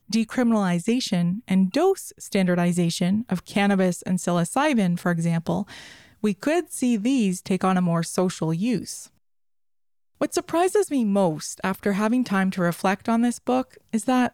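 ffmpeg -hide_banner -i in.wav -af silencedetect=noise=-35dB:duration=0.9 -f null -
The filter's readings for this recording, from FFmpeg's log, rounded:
silence_start: 9.05
silence_end: 10.21 | silence_duration: 1.16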